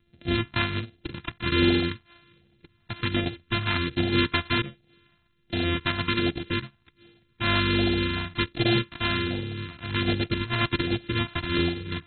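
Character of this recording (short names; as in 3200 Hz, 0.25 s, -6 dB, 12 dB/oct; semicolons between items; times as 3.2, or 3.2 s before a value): a buzz of ramps at a fixed pitch in blocks of 128 samples; phasing stages 2, 1.3 Hz, lowest notch 490–1000 Hz; AAC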